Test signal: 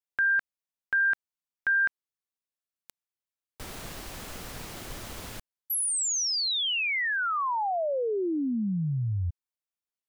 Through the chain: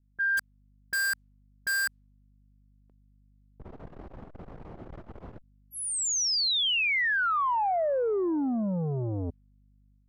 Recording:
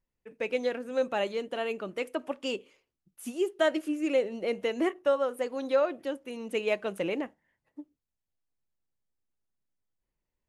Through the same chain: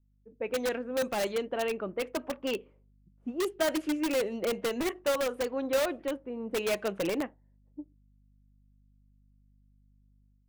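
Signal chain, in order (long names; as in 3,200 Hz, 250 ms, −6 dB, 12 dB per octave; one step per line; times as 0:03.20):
mains hum 50 Hz, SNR 33 dB
automatic gain control gain up to 5 dB
low-pass that shuts in the quiet parts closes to 330 Hz, open at −19 dBFS
in parallel at −3.5 dB: wrap-around overflow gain 19 dB
on the sum: saturating transformer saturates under 280 Hz
level −7.5 dB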